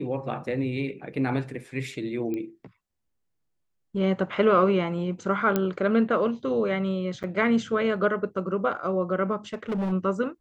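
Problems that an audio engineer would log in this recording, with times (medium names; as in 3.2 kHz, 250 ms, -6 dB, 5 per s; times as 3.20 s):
2.34 s: pop -21 dBFS
5.56 s: pop -10 dBFS
7.23–7.24 s: dropout 8.1 ms
9.54–9.93 s: clipped -24.5 dBFS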